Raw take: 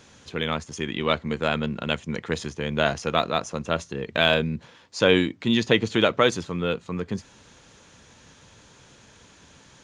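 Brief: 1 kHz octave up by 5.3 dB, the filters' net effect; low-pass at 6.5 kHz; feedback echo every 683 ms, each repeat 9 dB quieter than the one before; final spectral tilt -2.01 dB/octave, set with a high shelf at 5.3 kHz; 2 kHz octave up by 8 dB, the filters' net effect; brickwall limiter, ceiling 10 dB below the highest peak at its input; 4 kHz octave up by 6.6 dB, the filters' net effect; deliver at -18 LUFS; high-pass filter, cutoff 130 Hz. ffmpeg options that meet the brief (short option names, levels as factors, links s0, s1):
-af "highpass=130,lowpass=6500,equalizer=f=1000:t=o:g=4,equalizer=f=2000:t=o:g=8.5,equalizer=f=4000:t=o:g=8,highshelf=f=5300:g=-8,alimiter=limit=0.376:level=0:latency=1,aecho=1:1:683|1366|2049|2732:0.355|0.124|0.0435|0.0152,volume=2.11"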